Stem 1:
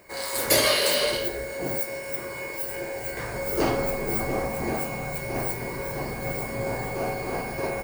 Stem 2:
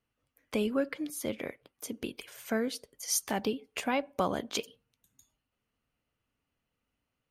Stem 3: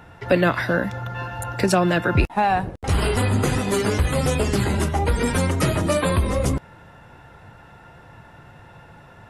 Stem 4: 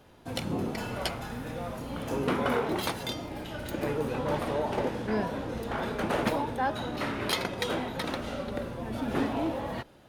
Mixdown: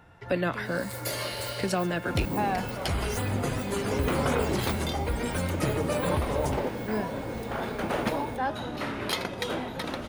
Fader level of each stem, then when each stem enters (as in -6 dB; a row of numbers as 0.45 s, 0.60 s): -13.0 dB, -12.0 dB, -9.5 dB, -0.5 dB; 0.55 s, 0.00 s, 0.00 s, 1.80 s